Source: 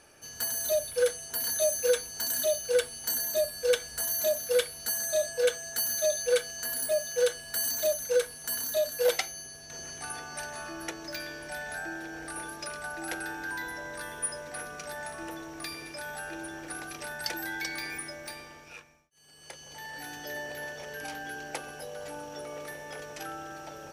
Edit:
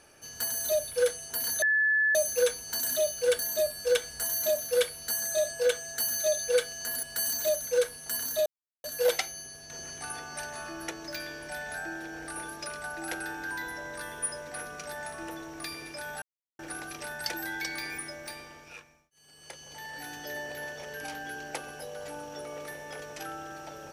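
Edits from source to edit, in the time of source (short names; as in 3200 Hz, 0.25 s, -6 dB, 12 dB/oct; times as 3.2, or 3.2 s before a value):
1.62 add tone 1730 Hz -21.5 dBFS 0.53 s
2.86–3.17 cut
6.81–7.41 cut
8.84 insert silence 0.38 s
16.22–16.59 mute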